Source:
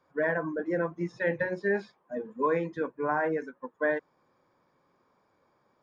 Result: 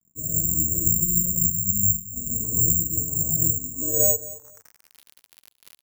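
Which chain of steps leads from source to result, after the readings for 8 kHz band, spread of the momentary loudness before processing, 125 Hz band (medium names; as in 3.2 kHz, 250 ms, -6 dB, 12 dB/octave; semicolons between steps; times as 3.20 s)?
no reading, 7 LU, +13.0 dB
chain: octave divider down 2 oct, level +2 dB; gate -58 dBFS, range -32 dB; spectral replace 1.38–1.94 s, 210–1300 Hz after; gated-style reverb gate 190 ms rising, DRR -7 dB; crackle 67 per s -30 dBFS; low-pass sweep 190 Hz -> 4.6 kHz, 3.60–5.14 s; feedback delay 222 ms, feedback 22%, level -17.5 dB; careless resampling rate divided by 6×, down none, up zero stuff; trim -8 dB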